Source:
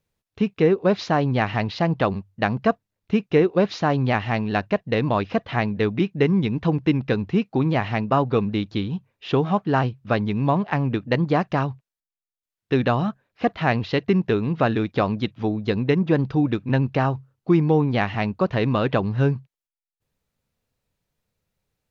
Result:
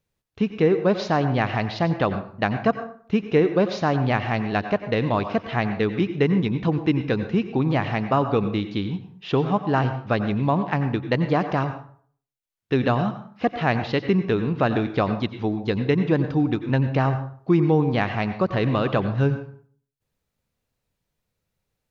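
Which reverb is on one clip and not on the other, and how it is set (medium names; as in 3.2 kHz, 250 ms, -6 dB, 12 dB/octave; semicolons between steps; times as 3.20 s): plate-style reverb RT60 0.5 s, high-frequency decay 0.65×, pre-delay 80 ms, DRR 9.5 dB; trim -1 dB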